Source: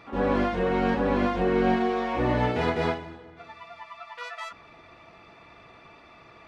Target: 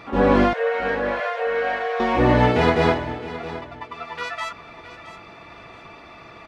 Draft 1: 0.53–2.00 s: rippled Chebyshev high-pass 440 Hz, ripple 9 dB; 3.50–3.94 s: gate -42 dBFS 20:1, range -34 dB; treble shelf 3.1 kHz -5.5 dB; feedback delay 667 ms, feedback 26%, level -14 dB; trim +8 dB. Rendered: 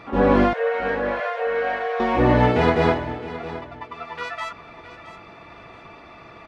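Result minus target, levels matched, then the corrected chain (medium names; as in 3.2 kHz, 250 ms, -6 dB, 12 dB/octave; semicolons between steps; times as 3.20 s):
8 kHz band -4.5 dB
0.53–2.00 s: rippled Chebyshev high-pass 440 Hz, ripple 9 dB; 3.50–3.94 s: gate -42 dBFS 20:1, range -34 dB; feedback delay 667 ms, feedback 26%, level -14 dB; trim +8 dB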